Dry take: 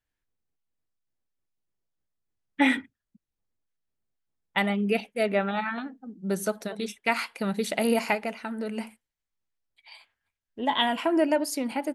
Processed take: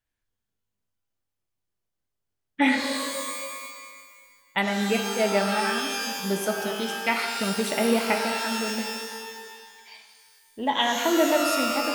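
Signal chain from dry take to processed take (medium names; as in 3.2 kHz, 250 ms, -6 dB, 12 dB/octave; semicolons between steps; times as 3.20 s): pitch-shifted reverb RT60 1.7 s, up +12 st, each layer -2 dB, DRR 4 dB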